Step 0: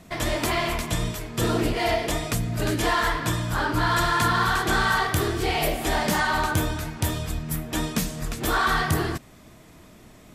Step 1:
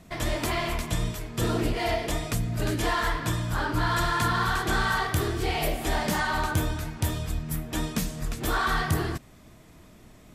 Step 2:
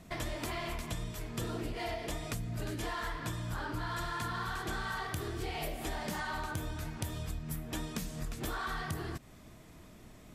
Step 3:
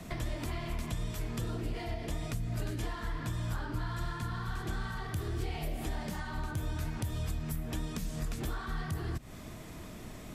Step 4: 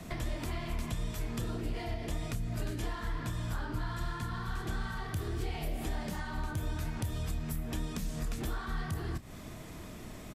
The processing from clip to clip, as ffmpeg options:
-af "lowshelf=f=120:g=5,volume=-4dB"
-af "acompressor=threshold=-32dB:ratio=6,volume=-2.5dB"
-filter_complex "[0:a]acrossover=split=100|270[a][b][c];[a]acompressor=threshold=-42dB:ratio=4[d];[b]acompressor=threshold=-50dB:ratio=4[e];[c]acompressor=threshold=-52dB:ratio=4[f];[d][e][f]amix=inputs=3:normalize=0,volume=8.5dB"
-filter_complex "[0:a]asplit=2[a][b];[b]adelay=30,volume=-13.5dB[c];[a][c]amix=inputs=2:normalize=0"

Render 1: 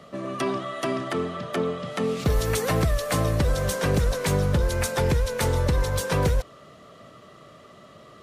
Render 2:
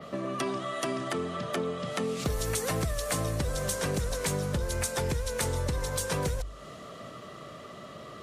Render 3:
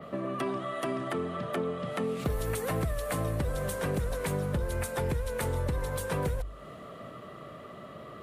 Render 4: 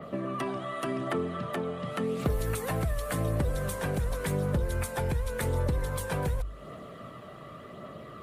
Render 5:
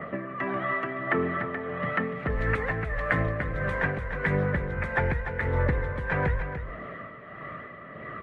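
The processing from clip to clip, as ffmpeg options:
-af "bandreject=f=50:t=h:w=6,bandreject=f=100:t=h:w=6,adynamicequalizer=threshold=0.00398:dfrequency=8400:dqfactor=0.77:tfrequency=8400:tqfactor=0.77:attack=5:release=100:ratio=0.375:range=4:mode=boostabove:tftype=bell,acompressor=threshold=-37dB:ratio=2.5,volume=4dB"
-af "equalizer=f=5.9k:w=0.87:g=-13.5"
-af "aphaser=in_gain=1:out_gain=1:delay=1.4:decay=0.27:speed=0.89:type=triangular"
-af "lowpass=f=1.9k:t=q:w=4.6,tremolo=f=1.6:d=0.67,aecho=1:1:294:0.355,volume=3.5dB"

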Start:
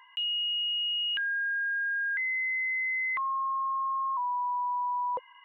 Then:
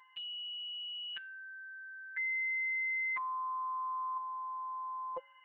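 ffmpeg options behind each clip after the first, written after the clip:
-af "aemphasis=mode=reproduction:type=50fm,afftfilt=real='hypot(re,im)*cos(PI*b)':imag='0':win_size=1024:overlap=0.75,bandreject=f=276:t=h:w=4,bandreject=f=552:t=h:w=4,bandreject=f=828:t=h:w=4,bandreject=f=1.104k:t=h:w=4,bandreject=f=1.38k:t=h:w=4,bandreject=f=1.656k:t=h:w=4,bandreject=f=1.932k:t=h:w=4,bandreject=f=2.208k:t=h:w=4,bandreject=f=2.484k:t=h:w=4,bandreject=f=2.76k:t=h:w=4,bandreject=f=3.036k:t=h:w=4,bandreject=f=3.312k:t=h:w=4,bandreject=f=3.588k:t=h:w=4,bandreject=f=3.864k:t=h:w=4,bandreject=f=4.14k:t=h:w=4,bandreject=f=4.416k:t=h:w=4,bandreject=f=4.692k:t=h:w=4,bandreject=f=4.968k:t=h:w=4,bandreject=f=5.244k:t=h:w=4,bandreject=f=5.52k:t=h:w=4,bandreject=f=5.796k:t=h:w=4,bandreject=f=6.072k:t=h:w=4,bandreject=f=6.348k:t=h:w=4,bandreject=f=6.624k:t=h:w=4,bandreject=f=6.9k:t=h:w=4,bandreject=f=7.176k:t=h:w=4,bandreject=f=7.452k:t=h:w=4,volume=-2dB"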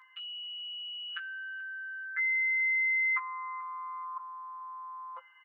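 -filter_complex "[0:a]highpass=f=1.3k:t=q:w=9.9,asplit=2[a][b];[b]adelay=17,volume=-6dB[c];[a][c]amix=inputs=2:normalize=0,aecho=1:1:432|864:0.0794|0.0207,volume=-1.5dB"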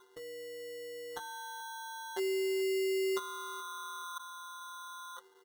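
-af "acrusher=samples=18:mix=1:aa=0.000001,volume=-3.5dB"

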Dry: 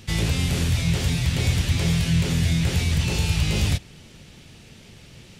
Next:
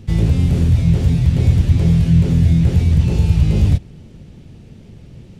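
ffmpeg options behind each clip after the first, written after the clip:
-af "tiltshelf=f=790:g=9.5"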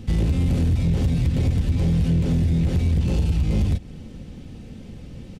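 -af "aecho=1:1:3.9:0.37,acompressor=threshold=-15dB:ratio=6,asoftclip=type=tanh:threshold=-15.5dB,volume=1.5dB"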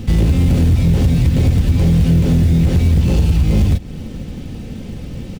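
-filter_complex "[0:a]asplit=2[a][b];[b]alimiter=level_in=1dB:limit=-24dB:level=0:latency=1:release=278,volume=-1dB,volume=-2.5dB[c];[a][c]amix=inputs=2:normalize=0,acrusher=bits=8:mode=log:mix=0:aa=0.000001,volume=5.5dB"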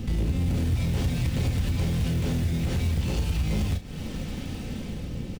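-filter_complex "[0:a]acrossover=split=700[a][b];[b]dynaudnorm=f=120:g=11:m=7dB[c];[a][c]amix=inputs=2:normalize=0,alimiter=limit=-14dB:level=0:latency=1:release=327,asplit=2[d][e];[e]adelay=33,volume=-9.5dB[f];[d][f]amix=inputs=2:normalize=0,volume=-6dB"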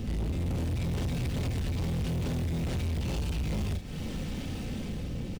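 -af "asoftclip=type=tanh:threshold=-27.5dB"

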